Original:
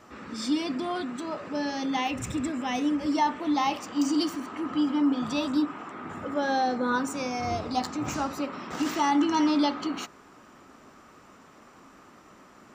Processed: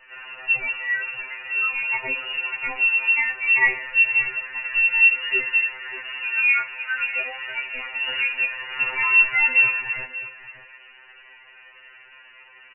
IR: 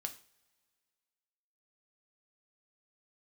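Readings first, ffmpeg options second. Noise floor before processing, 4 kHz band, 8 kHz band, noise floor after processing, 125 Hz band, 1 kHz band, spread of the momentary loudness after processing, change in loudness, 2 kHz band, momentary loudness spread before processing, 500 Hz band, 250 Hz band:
−54 dBFS, +3.5 dB, below −40 dB, −49 dBFS, can't be measured, −6.5 dB, 13 LU, +8.5 dB, +19.0 dB, 10 LU, −9.0 dB, below −25 dB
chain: -filter_complex "[0:a]bandreject=frequency=164.9:width_type=h:width=4,bandreject=frequency=329.8:width_type=h:width=4,bandreject=frequency=494.7:width_type=h:width=4,bandreject=frequency=659.6:width_type=h:width=4,bandreject=frequency=824.5:width_type=h:width=4,bandreject=frequency=989.4:width_type=h:width=4,bandreject=frequency=1154.3:width_type=h:width=4,bandreject=frequency=1319.2:width_type=h:width=4,bandreject=frequency=1484.1:width_type=h:width=4,bandreject=frequency=1649:width_type=h:width=4,bandreject=frequency=1813.9:width_type=h:width=4,bandreject=frequency=1978.8:width_type=h:width=4,bandreject=frequency=2143.7:width_type=h:width=4,bandreject=frequency=2308.6:width_type=h:width=4,bandreject=frequency=2473.5:width_type=h:width=4,bandreject=frequency=2638.4:width_type=h:width=4,bandreject=frequency=2803.3:width_type=h:width=4,bandreject=frequency=2968.2:width_type=h:width=4,bandreject=frequency=3133.1:width_type=h:width=4,bandreject=frequency=3298:width_type=h:width=4,bandreject=frequency=3462.9:width_type=h:width=4,bandreject=frequency=3627.8:width_type=h:width=4,bandreject=frequency=3792.7:width_type=h:width=4,bandreject=frequency=3957.6:width_type=h:width=4,bandreject=frequency=4122.5:width_type=h:width=4,bandreject=frequency=4287.4:width_type=h:width=4,bandreject=frequency=4452.3:width_type=h:width=4,lowpass=frequency=2600:width_type=q:width=0.5098,lowpass=frequency=2600:width_type=q:width=0.6013,lowpass=frequency=2600:width_type=q:width=0.9,lowpass=frequency=2600:width_type=q:width=2.563,afreqshift=-3000,lowshelf=frequency=110:width_type=q:width=3:gain=7,aecho=1:1:2.1:0.42,asplit=2[link_01][link_02];[link_02]adelay=583.1,volume=-12dB,highshelf=frequency=4000:gain=-13.1[link_03];[link_01][link_03]amix=inputs=2:normalize=0,asplit=2[link_04][link_05];[1:a]atrim=start_sample=2205,lowpass=3200[link_06];[link_05][link_06]afir=irnorm=-1:irlink=0,volume=-6dB[link_07];[link_04][link_07]amix=inputs=2:normalize=0,afftfilt=real='re*2.45*eq(mod(b,6),0)':imag='im*2.45*eq(mod(b,6),0)':win_size=2048:overlap=0.75,volume=5dB"

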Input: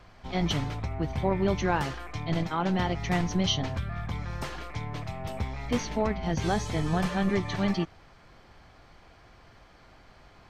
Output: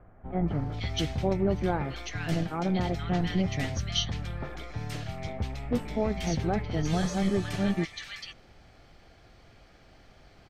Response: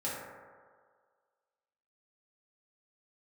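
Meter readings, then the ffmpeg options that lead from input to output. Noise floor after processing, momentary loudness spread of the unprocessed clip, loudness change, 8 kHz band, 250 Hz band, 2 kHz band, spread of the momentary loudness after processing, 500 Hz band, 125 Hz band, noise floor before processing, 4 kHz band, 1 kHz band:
−57 dBFS, 10 LU, −0.5 dB, 0.0 dB, 0.0 dB, −2.5 dB, 10 LU, −0.5 dB, 0.0 dB, −56 dBFS, −0.5 dB, −4.0 dB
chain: -filter_complex "[0:a]equalizer=frequency=1000:width_type=o:width=0.35:gain=-9,acrossover=split=1500[link_01][link_02];[link_02]adelay=480[link_03];[link_01][link_03]amix=inputs=2:normalize=0"

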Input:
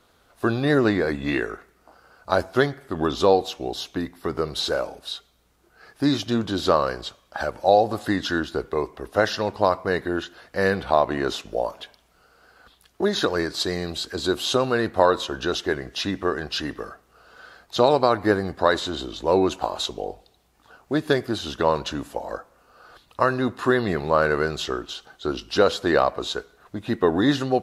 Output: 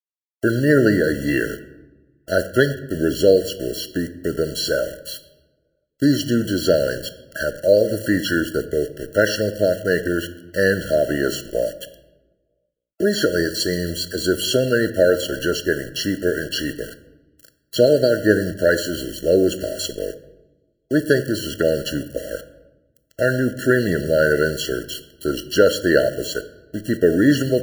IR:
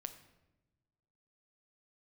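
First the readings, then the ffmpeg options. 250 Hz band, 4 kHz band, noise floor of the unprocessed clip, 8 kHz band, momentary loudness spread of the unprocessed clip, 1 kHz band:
+4.5 dB, +2.0 dB, −61 dBFS, +7.5 dB, 12 LU, −9.5 dB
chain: -filter_complex "[0:a]aeval=exprs='val(0)*gte(abs(val(0)),0.015)':channel_layout=same,highshelf=frequency=7300:gain=11.5,asplit=2[link_01][link_02];[1:a]atrim=start_sample=2205[link_03];[link_02][link_03]afir=irnorm=-1:irlink=0,volume=11dB[link_04];[link_01][link_04]amix=inputs=2:normalize=0,afftfilt=real='re*eq(mod(floor(b*sr/1024/670),2),0)':imag='im*eq(mod(floor(b*sr/1024/670),2),0)':win_size=1024:overlap=0.75,volume=-6dB"

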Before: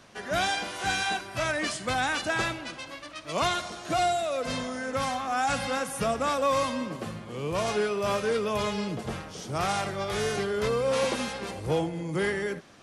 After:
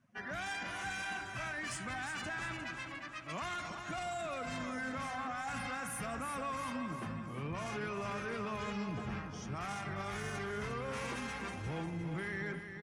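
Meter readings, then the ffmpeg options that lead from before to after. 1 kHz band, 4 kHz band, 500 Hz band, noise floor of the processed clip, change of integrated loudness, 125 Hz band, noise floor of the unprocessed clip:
−11.0 dB, −14.0 dB, −15.5 dB, −46 dBFS, −11.0 dB, −6.5 dB, −44 dBFS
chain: -filter_complex "[0:a]afftdn=noise_reduction=22:noise_floor=-45,equalizer=frequency=500:width_type=o:width=1:gain=-11,equalizer=frequency=2000:width_type=o:width=1:gain=4,equalizer=frequency=4000:width_type=o:width=1:gain=-9,alimiter=level_in=4.5dB:limit=-24dB:level=0:latency=1:release=26,volume=-4.5dB,asoftclip=type=tanh:threshold=-30dB,asplit=2[link_01][link_02];[link_02]aecho=0:1:353|706|1059|1412|1765:0.398|0.187|0.0879|0.0413|0.0194[link_03];[link_01][link_03]amix=inputs=2:normalize=0,volume=-2.5dB"

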